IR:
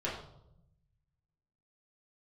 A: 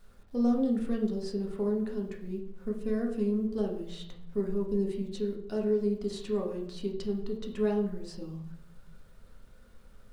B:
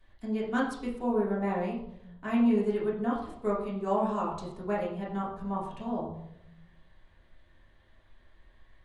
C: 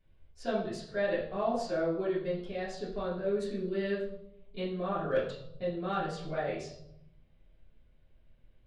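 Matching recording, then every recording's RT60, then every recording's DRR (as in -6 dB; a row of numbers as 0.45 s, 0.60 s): B; 0.80 s, 0.80 s, 0.80 s; -0.5 dB, -7.5 dB, -13.5 dB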